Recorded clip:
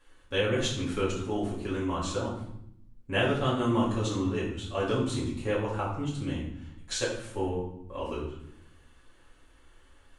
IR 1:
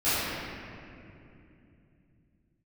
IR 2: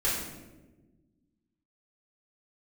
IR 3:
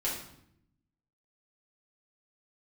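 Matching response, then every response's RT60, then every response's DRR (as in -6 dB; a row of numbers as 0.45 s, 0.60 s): 3; 2.7 s, 1.2 s, 0.70 s; -18.0 dB, -9.5 dB, -7.5 dB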